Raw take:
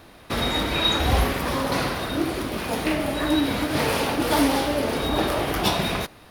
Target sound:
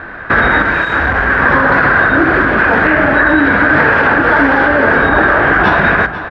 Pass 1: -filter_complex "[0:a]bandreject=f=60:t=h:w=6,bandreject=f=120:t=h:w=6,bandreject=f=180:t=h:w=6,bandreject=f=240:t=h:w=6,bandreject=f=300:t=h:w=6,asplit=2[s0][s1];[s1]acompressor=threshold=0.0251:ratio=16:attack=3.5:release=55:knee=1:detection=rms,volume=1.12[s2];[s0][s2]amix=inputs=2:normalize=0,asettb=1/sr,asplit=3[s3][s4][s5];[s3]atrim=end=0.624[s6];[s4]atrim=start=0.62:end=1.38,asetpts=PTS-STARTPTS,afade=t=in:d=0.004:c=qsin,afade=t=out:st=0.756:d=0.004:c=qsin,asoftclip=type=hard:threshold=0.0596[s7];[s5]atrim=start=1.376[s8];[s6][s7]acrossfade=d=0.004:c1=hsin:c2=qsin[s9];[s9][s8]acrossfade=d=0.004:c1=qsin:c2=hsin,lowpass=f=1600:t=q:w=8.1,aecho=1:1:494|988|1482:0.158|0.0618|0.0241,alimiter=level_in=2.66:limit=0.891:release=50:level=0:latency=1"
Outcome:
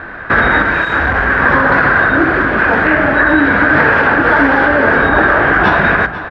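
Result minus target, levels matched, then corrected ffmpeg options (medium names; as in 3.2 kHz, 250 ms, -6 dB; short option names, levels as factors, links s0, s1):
compression: peak gain reduction +5.5 dB
-filter_complex "[0:a]bandreject=f=60:t=h:w=6,bandreject=f=120:t=h:w=6,bandreject=f=180:t=h:w=6,bandreject=f=240:t=h:w=6,bandreject=f=300:t=h:w=6,asplit=2[s0][s1];[s1]acompressor=threshold=0.0501:ratio=16:attack=3.5:release=55:knee=1:detection=rms,volume=1.12[s2];[s0][s2]amix=inputs=2:normalize=0,asettb=1/sr,asplit=3[s3][s4][s5];[s3]atrim=end=0.624[s6];[s4]atrim=start=0.62:end=1.38,asetpts=PTS-STARTPTS,afade=t=in:d=0.004:c=qsin,afade=t=out:st=0.756:d=0.004:c=qsin,asoftclip=type=hard:threshold=0.0596[s7];[s5]atrim=start=1.376[s8];[s6][s7]acrossfade=d=0.004:c1=hsin:c2=qsin[s9];[s9][s8]acrossfade=d=0.004:c1=qsin:c2=hsin,lowpass=f=1600:t=q:w=8.1,aecho=1:1:494|988|1482:0.158|0.0618|0.0241,alimiter=level_in=2.66:limit=0.891:release=50:level=0:latency=1"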